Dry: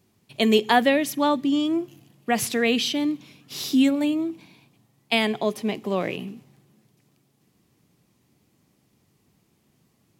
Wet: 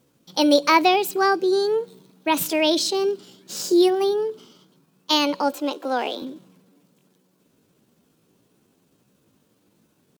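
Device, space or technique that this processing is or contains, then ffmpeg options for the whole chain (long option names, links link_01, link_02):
chipmunk voice: -filter_complex "[0:a]asetrate=58866,aresample=44100,atempo=0.749154,asettb=1/sr,asplit=3[link_01][link_02][link_03];[link_01]atrim=end=5.524[link_04];[link_02]atrim=start=5.52:end=6.22,asetpts=PTS-STARTPTS,afade=type=in:duration=0.004:curve=qsin,afade=type=out:start_time=0.696:duration=0.004:curve=qsin,highpass=frequency=280:width=0.5412,highpass=frequency=280:width=1.3066[link_05];[link_03]atrim=start=6.216[link_06];[link_04][link_05]acrossfade=duration=0.004:curve1=hsin:curve2=qsin[link_07];[link_07][link_06]acrossfade=duration=0.004:curve1=qsin:curve2=hsin,volume=2dB"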